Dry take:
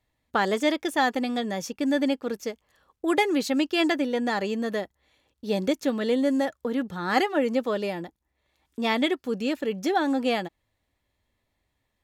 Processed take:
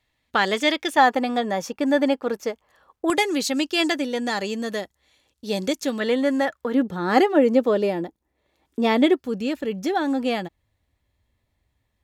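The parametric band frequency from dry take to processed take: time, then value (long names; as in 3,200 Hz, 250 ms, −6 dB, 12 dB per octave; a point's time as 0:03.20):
parametric band +8.5 dB 2.3 octaves
3,000 Hz
from 0:00.97 880 Hz
from 0:03.10 7,200 Hz
from 0:06.00 1,500 Hz
from 0:06.74 370 Hz
from 0:09.20 72 Hz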